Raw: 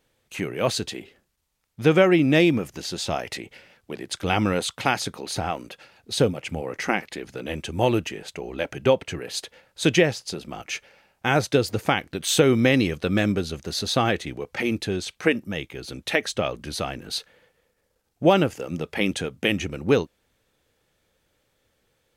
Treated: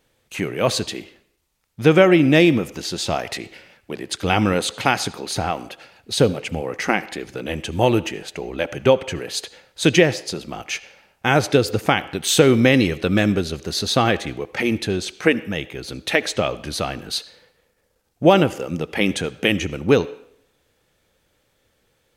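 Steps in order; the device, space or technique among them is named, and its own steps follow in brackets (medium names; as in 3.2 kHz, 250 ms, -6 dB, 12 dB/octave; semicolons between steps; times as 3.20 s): filtered reverb send (on a send: high-pass 320 Hz 12 dB/octave + low-pass 6.7 kHz + reverberation RT60 0.70 s, pre-delay 63 ms, DRR 17 dB); on the sum: trim +4 dB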